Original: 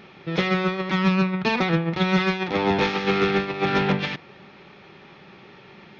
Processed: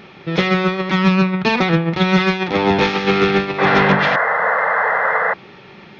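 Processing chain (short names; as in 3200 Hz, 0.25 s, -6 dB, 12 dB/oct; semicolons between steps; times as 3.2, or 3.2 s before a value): painted sound noise, 3.58–5.34, 430–2100 Hz -23 dBFS; gain +6 dB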